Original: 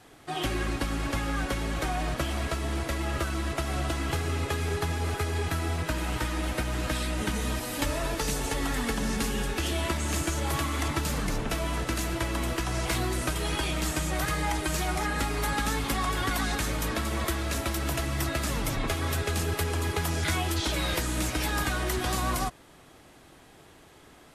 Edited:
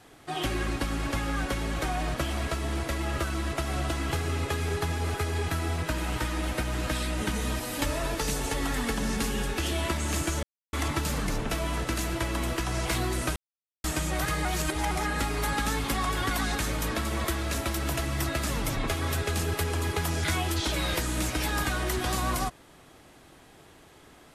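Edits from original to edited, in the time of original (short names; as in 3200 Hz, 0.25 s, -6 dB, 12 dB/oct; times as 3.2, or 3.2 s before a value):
10.43–10.73 mute
13.36–13.84 mute
14.45–14.91 reverse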